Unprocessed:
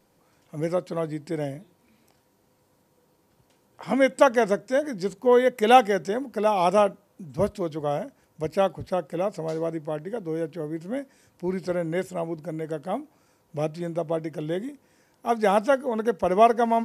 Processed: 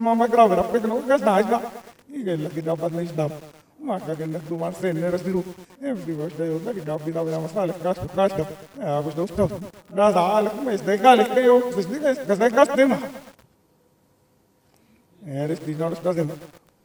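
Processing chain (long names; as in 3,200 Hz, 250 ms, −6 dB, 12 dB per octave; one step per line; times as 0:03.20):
played backwards from end to start
low-shelf EQ 290 Hz +4.5 dB
feedback echo at a low word length 118 ms, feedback 55%, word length 6 bits, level −12 dB
level +1.5 dB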